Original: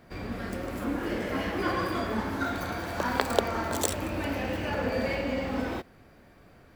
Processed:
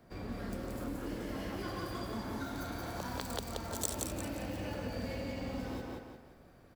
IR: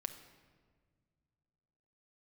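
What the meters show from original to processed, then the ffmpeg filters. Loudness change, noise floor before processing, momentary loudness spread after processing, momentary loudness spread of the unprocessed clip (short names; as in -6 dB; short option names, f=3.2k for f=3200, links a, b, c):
-9.0 dB, -56 dBFS, 7 LU, 7 LU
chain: -filter_complex "[0:a]equalizer=f=2.2k:t=o:w=1.5:g=-5.5,asplit=2[a][b];[b]aecho=0:1:176|352|528|704|880:0.631|0.233|0.0864|0.032|0.0118[c];[a][c]amix=inputs=2:normalize=0,acrossover=split=170|3000[d][e][f];[e]acompressor=threshold=-34dB:ratio=6[g];[d][g][f]amix=inputs=3:normalize=0,volume=-5dB"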